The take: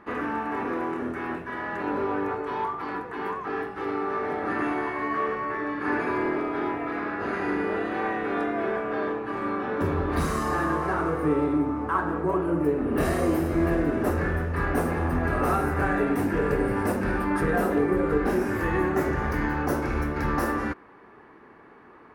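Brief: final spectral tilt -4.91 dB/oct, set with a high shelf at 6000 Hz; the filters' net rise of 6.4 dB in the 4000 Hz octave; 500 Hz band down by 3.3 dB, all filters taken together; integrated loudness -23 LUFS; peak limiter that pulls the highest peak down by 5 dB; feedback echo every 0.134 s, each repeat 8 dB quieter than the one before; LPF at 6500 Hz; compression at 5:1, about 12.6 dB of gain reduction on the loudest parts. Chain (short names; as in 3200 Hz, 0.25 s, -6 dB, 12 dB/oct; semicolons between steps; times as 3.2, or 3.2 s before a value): LPF 6500 Hz; bell 500 Hz -4.5 dB; bell 4000 Hz +8 dB; high shelf 6000 Hz +3.5 dB; compressor 5:1, threshold -36 dBFS; limiter -30.5 dBFS; feedback echo 0.134 s, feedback 40%, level -8 dB; gain +16 dB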